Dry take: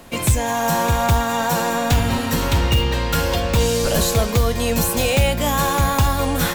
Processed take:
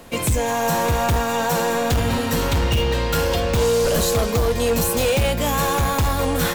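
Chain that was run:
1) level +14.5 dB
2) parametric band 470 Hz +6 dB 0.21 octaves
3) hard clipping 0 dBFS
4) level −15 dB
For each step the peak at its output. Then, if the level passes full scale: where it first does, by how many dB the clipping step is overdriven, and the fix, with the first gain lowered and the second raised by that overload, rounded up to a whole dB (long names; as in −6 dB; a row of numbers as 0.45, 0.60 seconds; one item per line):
+8.5, +9.5, 0.0, −15.0 dBFS
step 1, 9.5 dB
step 1 +4.5 dB, step 4 −5 dB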